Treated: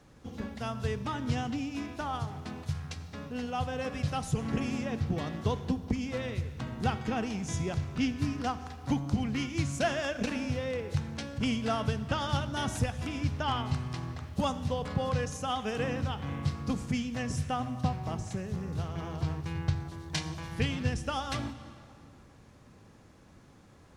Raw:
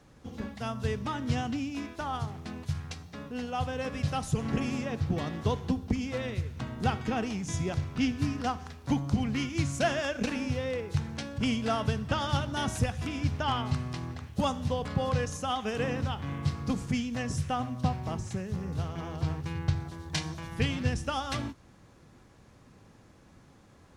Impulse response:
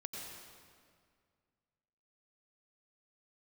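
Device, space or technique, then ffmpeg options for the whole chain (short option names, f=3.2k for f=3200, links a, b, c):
ducked reverb: -filter_complex "[0:a]asplit=3[a][b][c];[1:a]atrim=start_sample=2205[d];[b][d]afir=irnorm=-1:irlink=0[e];[c]apad=whole_len=1056639[f];[e][f]sidechaincompress=threshold=-32dB:ratio=8:attack=46:release=977,volume=-5.5dB[g];[a][g]amix=inputs=2:normalize=0,volume=-2.5dB"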